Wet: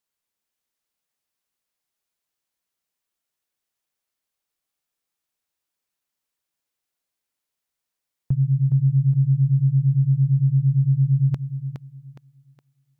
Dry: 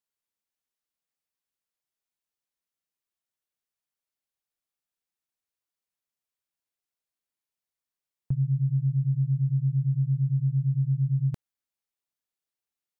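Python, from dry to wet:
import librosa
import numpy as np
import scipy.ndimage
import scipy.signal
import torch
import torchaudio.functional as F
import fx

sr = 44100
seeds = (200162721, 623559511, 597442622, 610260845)

y = fx.tracing_dist(x, sr, depth_ms=0.38)
y = fx.echo_thinned(y, sr, ms=415, feedback_pct=44, hz=210.0, wet_db=-5)
y = y * 10.0 ** (5.5 / 20.0)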